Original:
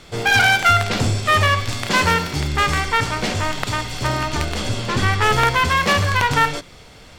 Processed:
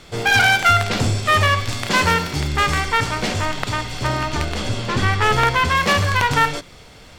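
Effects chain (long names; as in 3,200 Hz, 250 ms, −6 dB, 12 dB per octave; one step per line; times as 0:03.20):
0:03.45–0:05.75: high-shelf EQ 6,900 Hz −5 dB
surface crackle 220 per second −49 dBFS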